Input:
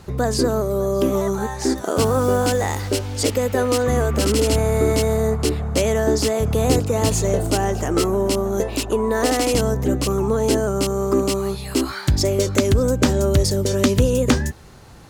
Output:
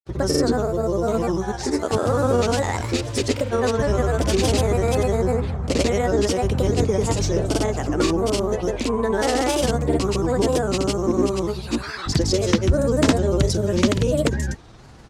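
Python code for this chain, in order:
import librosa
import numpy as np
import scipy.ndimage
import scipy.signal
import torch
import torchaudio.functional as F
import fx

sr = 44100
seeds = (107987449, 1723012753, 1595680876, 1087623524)

y = scipy.signal.sosfilt(scipy.signal.butter(2, 8200.0, 'lowpass', fs=sr, output='sos'), x)
y = fx.granulator(y, sr, seeds[0], grain_ms=100.0, per_s=20.0, spray_ms=100.0, spread_st=3)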